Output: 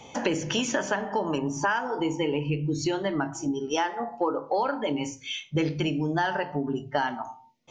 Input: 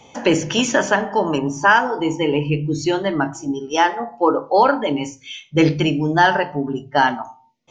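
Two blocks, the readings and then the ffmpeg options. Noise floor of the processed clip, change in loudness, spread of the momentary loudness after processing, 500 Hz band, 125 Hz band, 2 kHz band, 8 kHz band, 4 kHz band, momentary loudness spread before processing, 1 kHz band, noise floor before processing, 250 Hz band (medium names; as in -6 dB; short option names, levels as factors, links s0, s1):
-52 dBFS, -9.5 dB, 4 LU, -9.0 dB, -7.5 dB, -11.5 dB, -6.5 dB, -8.0 dB, 8 LU, -11.0 dB, -52 dBFS, -8.0 dB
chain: -af "acompressor=threshold=0.0562:ratio=4"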